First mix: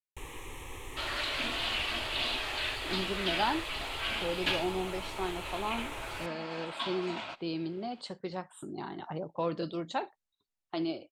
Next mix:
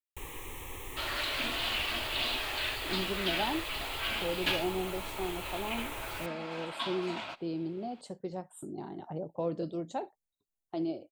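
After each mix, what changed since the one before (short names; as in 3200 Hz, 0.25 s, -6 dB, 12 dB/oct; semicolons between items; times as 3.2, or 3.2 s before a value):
speech: add band shelf 2200 Hz -11 dB 2.6 oct; master: remove LPF 9300 Hz 12 dB/oct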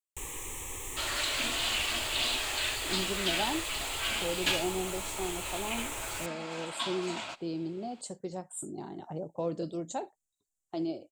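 master: add bell 7500 Hz +15 dB 0.82 oct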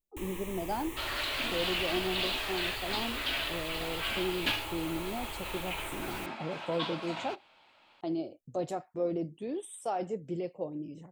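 speech: entry -2.70 s; master: add bell 7500 Hz -15 dB 0.82 oct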